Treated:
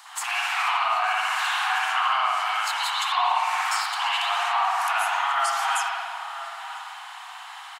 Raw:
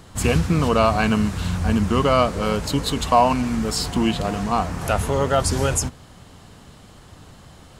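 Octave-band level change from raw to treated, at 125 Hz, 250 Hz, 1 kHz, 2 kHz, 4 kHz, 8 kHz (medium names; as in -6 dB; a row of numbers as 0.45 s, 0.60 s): under -40 dB, under -40 dB, +1.0 dB, +5.5 dB, +2.0 dB, -5.5 dB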